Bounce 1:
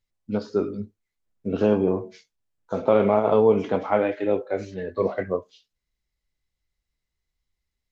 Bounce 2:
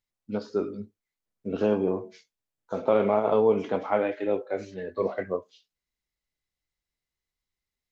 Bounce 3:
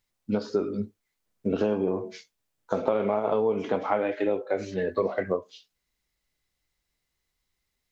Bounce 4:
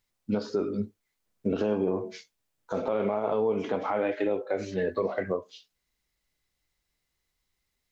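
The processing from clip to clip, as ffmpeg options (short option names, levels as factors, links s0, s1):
-af "lowshelf=f=110:g=-10,volume=0.708"
-af "acompressor=threshold=0.0282:ratio=5,volume=2.66"
-af "alimiter=limit=0.141:level=0:latency=1:release=48"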